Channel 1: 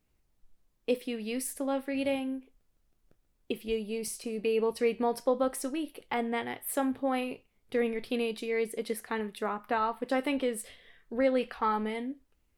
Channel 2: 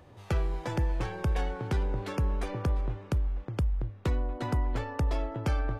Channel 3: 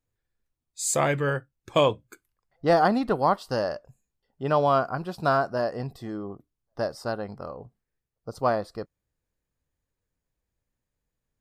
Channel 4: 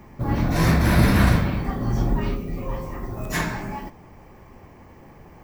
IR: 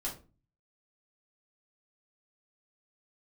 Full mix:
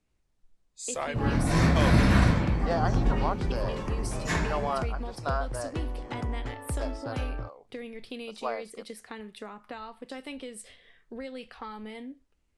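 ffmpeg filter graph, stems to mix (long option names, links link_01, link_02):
-filter_complex "[0:a]acrossover=split=150|3000[link_01][link_02][link_03];[link_02]acompressor=threshold=-38dB:ratio=6[link_04];[link_01][link_04][link_03]amix=inputs=3:normalize=0,volume=-1dB[link_05];[1:a]adelay=1700,volume=-4.5dB[link_06];[2:a]highpass=470,volume=-8dB[link_07];[3:a]adelay=950,volume=-4dB[link_08];[link_05][link_06][link_07][link_08]amix=inputs=4:normalize=0,lowpass=frequency=9300:width=0.5412,lowpass=frequency=9300:width=1.3066"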